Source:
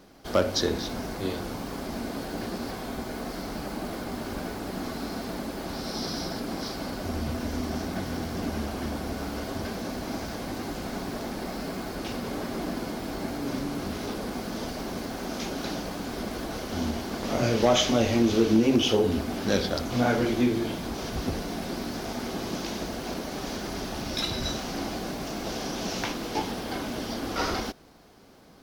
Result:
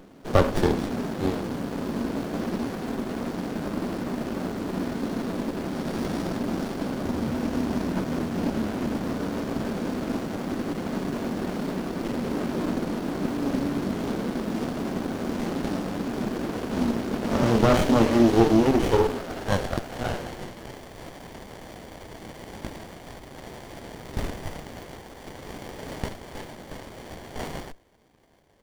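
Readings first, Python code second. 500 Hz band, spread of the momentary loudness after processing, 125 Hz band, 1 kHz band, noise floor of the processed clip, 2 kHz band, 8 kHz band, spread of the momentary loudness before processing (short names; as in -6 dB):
+2.0 dB, 20 LU, +3.5 dB, +1.5 dB, -44 dBFS, -0.5 dB, -5.5 dB, 11 LU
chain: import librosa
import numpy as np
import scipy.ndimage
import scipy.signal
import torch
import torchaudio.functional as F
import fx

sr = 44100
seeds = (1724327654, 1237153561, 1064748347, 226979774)

y = fx.filter_sweep_highpass(x, sr, from_hz=160.0, to_hz=2000.0, start_s=17.54, end_s=20.97, q=1.1)
y = fx.running_max(y, sr, window=33)
y = y * librosa.db_to_amplitude(5.0)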